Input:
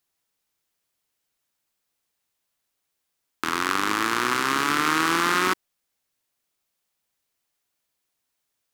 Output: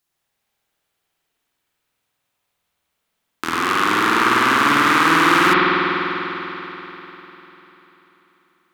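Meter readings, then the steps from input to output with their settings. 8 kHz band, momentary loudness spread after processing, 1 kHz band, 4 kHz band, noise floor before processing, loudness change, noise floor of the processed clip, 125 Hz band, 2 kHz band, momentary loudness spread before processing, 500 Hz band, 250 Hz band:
+1.0 dB, 17 LU, +8.5 dB, +6.0 dB, -79 dBFS, +7.0 dB, -76 dBFS, +9.0 dB, +8.5 dB, 7 LU, +9.0 dB, +8.5 dB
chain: spring tank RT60 3.8 s, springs 49 ms, chirp 30 ms, DRR -6.5 dB; trim +1 dB

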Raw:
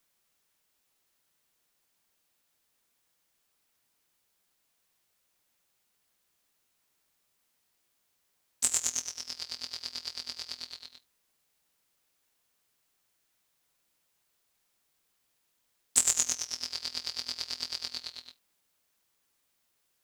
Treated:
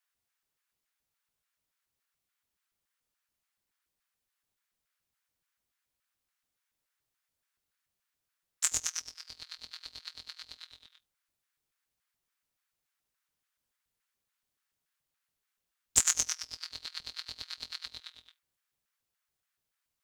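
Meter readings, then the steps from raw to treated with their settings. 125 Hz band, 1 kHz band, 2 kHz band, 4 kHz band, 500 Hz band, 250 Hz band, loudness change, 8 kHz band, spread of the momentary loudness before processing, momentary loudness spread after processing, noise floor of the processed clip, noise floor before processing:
no reading, -1.5 dB, +0.5 dB, -4.5 dB, -4.5 dB, -4.5 dB, -1.0 dB, -2.0 dB, 15 LU, 20 LU, under -85 dBFS, -76 dBFS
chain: LFO high-pass square 3.5 Hz 400–1900 Hz; frequency shift -470 Hz; upward expansion 1.5:1, over -42 dBFS

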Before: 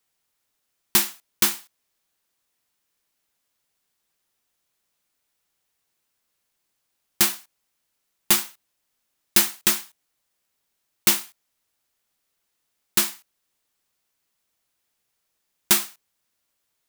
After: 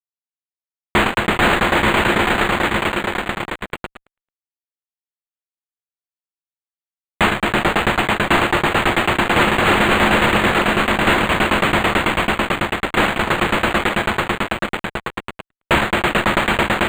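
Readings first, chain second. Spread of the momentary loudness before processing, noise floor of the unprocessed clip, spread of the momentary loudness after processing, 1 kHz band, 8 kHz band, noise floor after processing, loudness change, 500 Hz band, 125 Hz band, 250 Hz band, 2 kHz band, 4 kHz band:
10 LU, -77 dBFS, 10 LU, +22.5 dB, -7.0 dB, under -85 dBFS, +4.5 dB, +23.0 dB, +23.0 dB, +18.0 dB, +18.5 dB, +8.0 dB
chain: echo with a slow build-up 110 ms, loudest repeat 5, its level -7 dB; in parallel at +2 dB: level held to a coarse grid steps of 20 dB; on the sum: treble shelf 5.3 kHz -3.5 dB; fuzz box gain 29 dB, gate -32 dBFS; decimation joined by straight lines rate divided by 8×; trim +4 dB

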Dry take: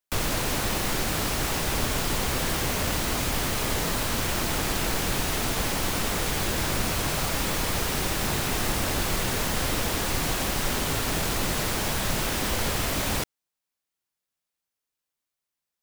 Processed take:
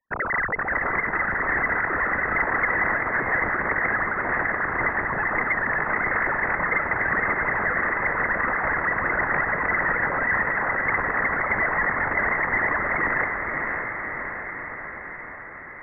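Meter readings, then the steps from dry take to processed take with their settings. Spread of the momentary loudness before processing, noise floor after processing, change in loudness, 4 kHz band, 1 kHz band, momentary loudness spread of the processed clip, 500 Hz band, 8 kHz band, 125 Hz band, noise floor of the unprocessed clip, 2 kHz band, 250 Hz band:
0 LU, -37 dBFS, +3.0 dB, under -40 dB, +6.5 dB, 8 LU, +1.5 dB, under -40 dB, -7.0 dB, under -85 dBFS, +11.5 dB, -3.0 dB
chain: formants replaced by sine waves; peaking EQ 400 Hz +4.5 dB 0.95 oct; in parallel at -8.5 dB: saturation -28.5 dBFS, distortion -9 dB; on the sum: distance through air 240 m; echo that smears into a reverb 593 ms, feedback 66%, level -4 dB; frequency inversion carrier 2.6 kHz

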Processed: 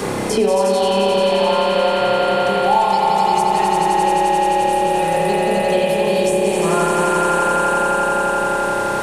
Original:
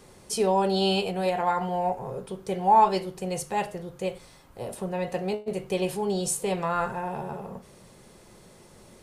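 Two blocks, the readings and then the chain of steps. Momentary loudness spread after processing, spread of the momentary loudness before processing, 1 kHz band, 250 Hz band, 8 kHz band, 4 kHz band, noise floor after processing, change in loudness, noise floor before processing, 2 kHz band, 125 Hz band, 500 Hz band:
2 LU, 14 LU, +11.5 dB, +9.5 dB, +8.5 dB, +11.0 dB, -20 dBFS, +11.0 dB, -53 dBFS, +16.5 dB, +7.5 dB, +12.5 dB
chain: echo with a slow build-up 87 ms, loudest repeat 5, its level -4.5 dB; spring tank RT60 1.3 s, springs 30 ms, chirp 50 ms, DRR -4.5 dB; three bands compressed up and down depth 100%

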